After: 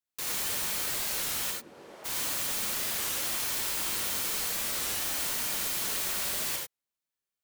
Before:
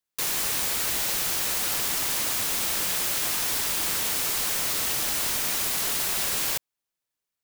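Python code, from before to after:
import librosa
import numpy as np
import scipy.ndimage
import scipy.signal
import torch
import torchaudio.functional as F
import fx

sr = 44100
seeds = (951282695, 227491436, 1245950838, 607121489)

y = fx.bandpass_q(x, sr, hz=fx.line((1.5, 220.0), (2.04, 640.0)), q=1.7, at=(1.5, 2.04), fade=0.02)
y = fx.rev_gated(y, sr, seeds[0], gate_ms=110, shape='rising', drr_db=-0.5)
y = fx.record_warp(y, sr, rpm=33.33, depth_cents=160.0)
y = y * 10.0 ** (-8.0 / 20.0)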